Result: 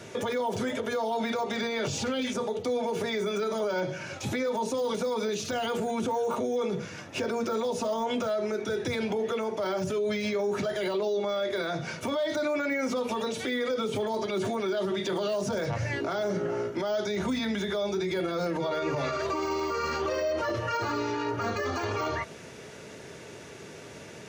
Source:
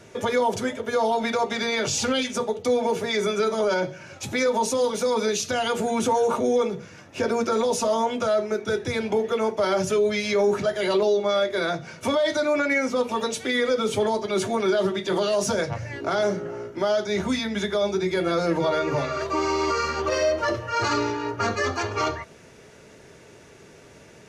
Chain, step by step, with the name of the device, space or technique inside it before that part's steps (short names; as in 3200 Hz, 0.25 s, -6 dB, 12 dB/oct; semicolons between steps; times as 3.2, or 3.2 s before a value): broadcast voice chain (HPF 82 Hz; de-esser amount 100%; compressor, threshold -24 dBFS, peak gain reduction 7 dB; bell 3500 Hz +2 dB; limiter -26 dBFS, peak gain reduction 10 dB); gain +4 dB